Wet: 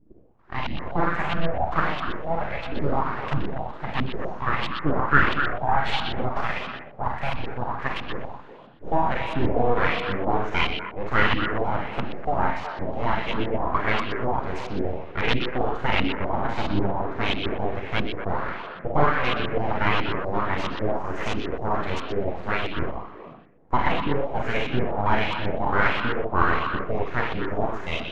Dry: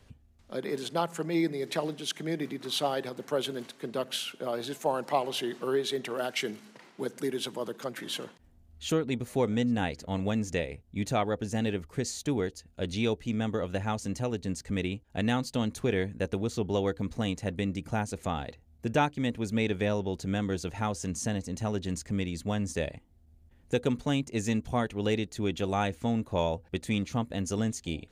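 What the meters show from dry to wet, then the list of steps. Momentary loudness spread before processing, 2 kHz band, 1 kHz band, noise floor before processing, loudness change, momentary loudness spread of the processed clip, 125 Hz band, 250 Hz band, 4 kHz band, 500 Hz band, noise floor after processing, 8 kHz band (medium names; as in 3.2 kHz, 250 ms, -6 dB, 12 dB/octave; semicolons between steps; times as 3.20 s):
6 LU, +12.5 dB, +11.0 dB, -60 dBFS, +5.5 dB, 9 LU, +3.5 dB, +0.5 dB, +3.5 dB, +3.5 dB, -42 dBFS, under -10 dB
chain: bass shelf 230 Hz -9.5 dB; Schroeder reverb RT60 0.7 s, combs from 33 ms, DRR 0.5 dB; full-wave rectifier; LFO low-pass saw up 1.5 Hz 230–3200 Hz; on a send: repeats whose band climbs or falls 123 ms, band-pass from 3.5 kHz, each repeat -1.4 oct, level -3.5 dB; on the sum: trim +8 dB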